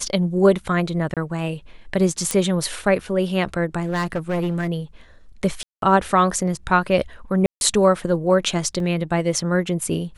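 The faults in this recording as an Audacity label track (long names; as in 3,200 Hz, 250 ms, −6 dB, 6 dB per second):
1.140000	1.170000	drop-out 27 ms
2.310000	2.310000	click −7 dBFS
3.820000	4.690000	clipping −18.5 dBFS
5.630000	5.820000	drop-out 192 ms
7.460000	7.610000	drop-out 151 ms
8.800000	8.800000	drop-out 2.1 ms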